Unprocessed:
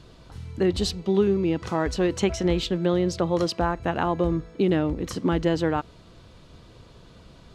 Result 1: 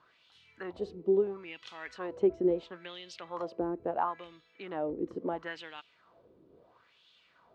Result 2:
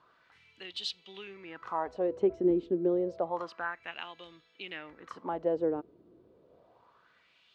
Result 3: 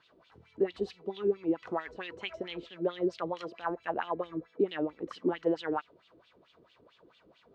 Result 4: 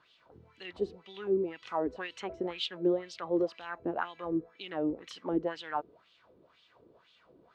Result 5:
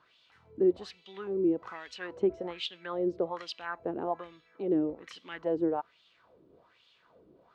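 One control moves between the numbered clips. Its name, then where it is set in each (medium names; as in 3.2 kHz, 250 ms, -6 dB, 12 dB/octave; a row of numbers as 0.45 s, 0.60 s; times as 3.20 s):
wah-wah, rate: 0.74 Hz, 0.29 Hz, 4.5 Hz, 2 Hz, 1.2 Hz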